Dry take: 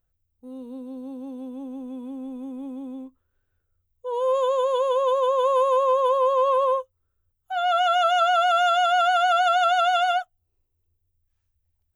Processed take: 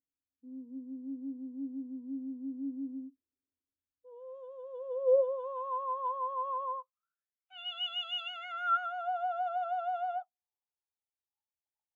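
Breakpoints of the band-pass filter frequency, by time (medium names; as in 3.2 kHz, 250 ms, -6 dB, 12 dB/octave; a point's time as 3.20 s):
band-pass filter, Q 12
4.52 s 280 Hz
5.70 s 910 Hz
6.76 s 910 Hz
7.64 s 3 kHz
8.21 s 3 kHz
9.08 s 850 Hz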